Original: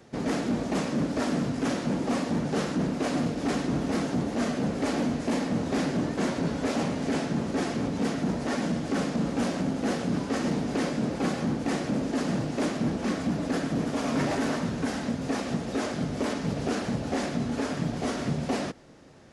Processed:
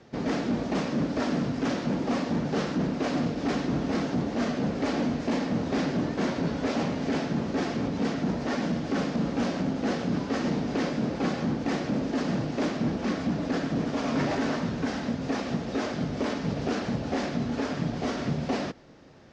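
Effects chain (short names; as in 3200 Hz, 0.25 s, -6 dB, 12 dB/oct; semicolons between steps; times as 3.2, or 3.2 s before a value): LPF 6000 Hz 24 dB/oct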